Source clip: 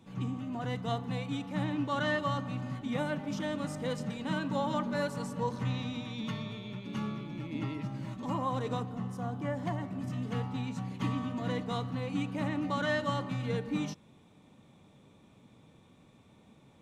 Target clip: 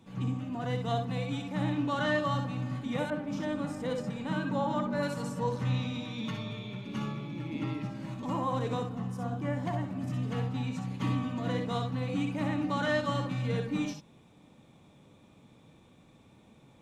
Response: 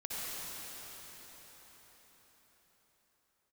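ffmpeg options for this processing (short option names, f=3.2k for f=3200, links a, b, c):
-filter_complex "[1:a]atrim=start_sample=2205,atrim=end_sample=3087[a];[0:a][a]afir=irnorm=-1:irlink=0,asettb=1/sr,asplit=3[b][c][d];[b]atrim=end=3.104[e];[c]atrim=start=3.1:end=5.03,asetpts=PTS-STARTPTS,afade=t=in:d=0.004:c=qsin,afade=t=out:st=1.926:d=0.004:c=qsin,adynamicequalizer=threshold=0.00178:dfrequency=2100:dqfactor=0.7:tfrequency=2100:tqfactor=0.7:attack=5:release=100:ratio=0.375:range=3.5:mode=cutabove:tftype=highshelf[f];[d]atrim=start=5.026[g];[e][f]acrossfade=d=0.004:c1=hsin:c2=qsin[h];[h][g]acrossfade=d=0.004:c1=qsin:c2=hsin,volume=6dB"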